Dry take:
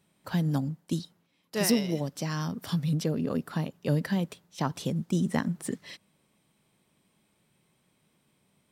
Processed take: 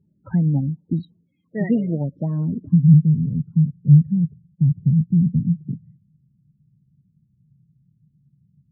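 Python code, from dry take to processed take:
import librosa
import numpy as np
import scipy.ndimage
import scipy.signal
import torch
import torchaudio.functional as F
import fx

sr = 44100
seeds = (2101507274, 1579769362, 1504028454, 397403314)

y = fx.bass_treble(x, sr, bass_db=11, treble_db=-12)
y = fx.spec_topn(y, sr, count=16)
y = fx.filter_sweep_lowpass(y, sr, from_hz=14000.0, to_hz=140.0, start_s=0.79, end_s=3.03, q=2.7)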